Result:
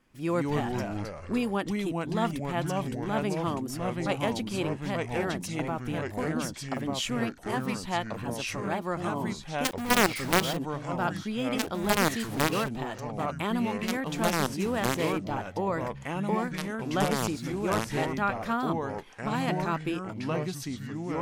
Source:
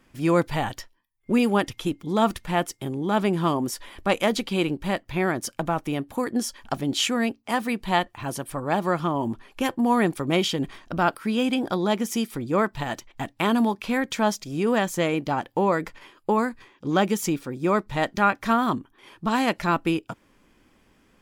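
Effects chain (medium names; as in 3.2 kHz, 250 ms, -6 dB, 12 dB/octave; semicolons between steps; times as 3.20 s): wow and flutter 27 cents; 9.64–10.57 s: companded quantiser 2-bit; ever faster or slower copies 117 ms, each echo -3 st, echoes 3; trim -8 dB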